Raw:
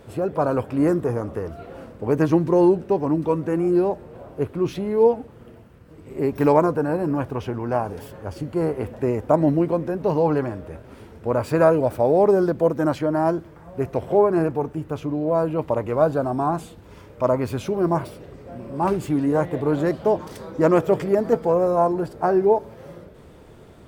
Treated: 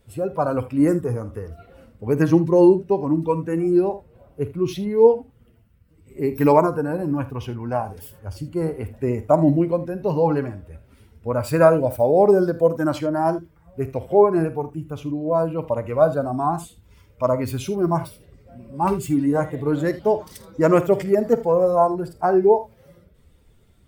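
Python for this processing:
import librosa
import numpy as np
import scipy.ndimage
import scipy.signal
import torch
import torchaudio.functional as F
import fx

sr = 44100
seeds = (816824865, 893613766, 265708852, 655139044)

y = fx.bin_expand(x, sr, power=1.5)
y = fx.high_shelf(y, sr, hz=7100.0, db=7.5)
y = fx.room_early_taps(y, sr, ms=(49, 79), db=(-15.0, -17.0))
y = y * 10.0 ** (4.0 / 20.0)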